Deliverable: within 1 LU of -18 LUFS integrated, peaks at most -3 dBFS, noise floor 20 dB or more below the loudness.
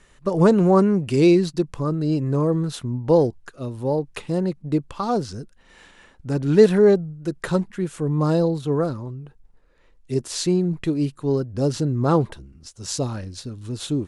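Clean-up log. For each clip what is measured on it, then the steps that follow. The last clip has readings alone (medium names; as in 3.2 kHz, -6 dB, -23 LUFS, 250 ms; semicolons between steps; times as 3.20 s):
loudness -21.5 LUFS; peak level -2.5 dBFS; loudness target -18.0 LUFS
-> trim +3.5 dB; peak limiter -3 dBFS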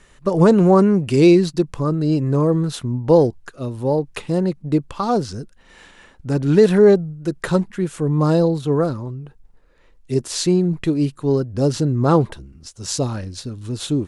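loudness -18.0 LUFS; peak level -3.0 dBFS; noise floor -51 dBFS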